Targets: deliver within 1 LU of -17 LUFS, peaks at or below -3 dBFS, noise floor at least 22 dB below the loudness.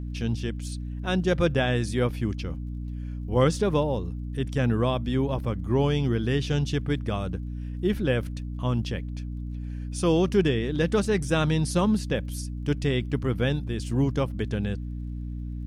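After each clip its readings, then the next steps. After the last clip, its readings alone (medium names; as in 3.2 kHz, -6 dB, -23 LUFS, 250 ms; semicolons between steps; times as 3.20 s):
tick rate 27 per s; hum 60 Hz; highest harmonic 300 Hz; hum level -30 dBFS; loudness -27.0 LUFS; peak level -9.5 dBFS; loudness target -17.0 LUFS
-> de-click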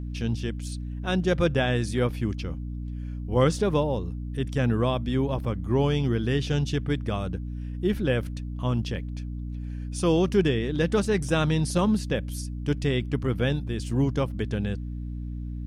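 tick rate 0.064 per s; hum 60 Hz; highest harmonic 300 Hz; hum level -30 dBFS
-> de-hum 60 Hz, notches 5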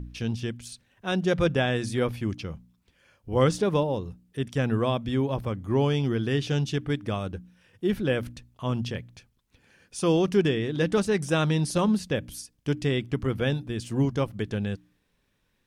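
hum not found; loudness -27.0 LUFS; peak level -10.0 dBFS; loudness target -17.0 LUFS
-> trim +10 dB; peak limiter -3 dBFS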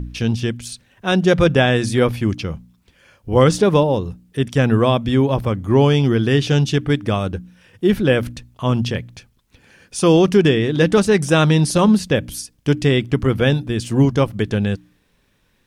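loudness -17.5 LUFS; peak level -3.0 dBFS; noise floor -61 dBFS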